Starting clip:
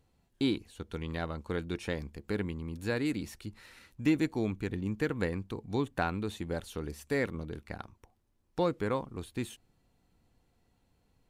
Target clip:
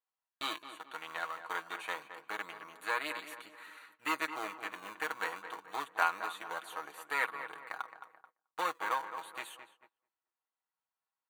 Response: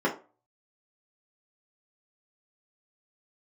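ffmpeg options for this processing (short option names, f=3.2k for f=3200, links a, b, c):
-filter_complex "[0:a]aeval=exprs='if(lt(val(0),0),0.708*val(0),val(0))':c=same,aeval=exprs='0.158*(cos(1*acos(clip(val(0)/0.158,-1,1)))-cos(1*PI/2))+0.0158*(cos(8*acos(clip(val(0)/0.158,-1,1)))-cos(8*PI/2))':c=same,equalizer=f=5.9k:t=o:w=0.71:g=-9,aecho=1:1:6.3:0.54,asplit=2[a][b];[b]acrusher=samples=20:mix=1:aa=0.000001:lfo=1:lforange=32:lforate=0.24,volume=-10dB[c];[a][c]amix=inputs=2:normalize=0,highpass=f=1.1k:t=q:w=2.4,asplit=2[d][e];[e]adelay=217,lowpass=f=2k:p=1,volume=-9.5dB,asplit=2[f][g];[g]adelay=217,lowpass=f=2k:p=1,volume=0.46,asplit=2[h][i];[i]adelay=217,lowpass=f=2k:p=1,volume=0.46,asplit=2[j][k];[k]adelay=217,lowpass=f=2k:p=1,volume=0.46,asplit=2[l][m];[m]adelay=217,lowpass=f=2k:p=1,volume=0.46[n];[f][h][j][l][n]amix=inputs=5:normalize=0[o];[d][o]amix=inputs=2:normalize=0,agate=range=-20dB:threshold=-60dB:ratio=16:detection=peak,asuperstop=centerf=5200:order=4:qfactor=6.4"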